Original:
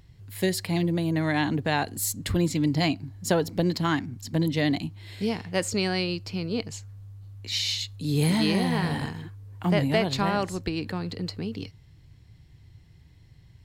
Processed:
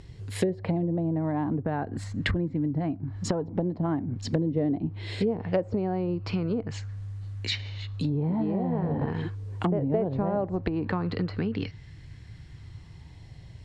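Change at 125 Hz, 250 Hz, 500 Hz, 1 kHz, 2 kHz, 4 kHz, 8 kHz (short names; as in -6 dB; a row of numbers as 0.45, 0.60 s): -0.5, -1.5, -0.5, -4.0, -7.5, -9.0, -12.5 dB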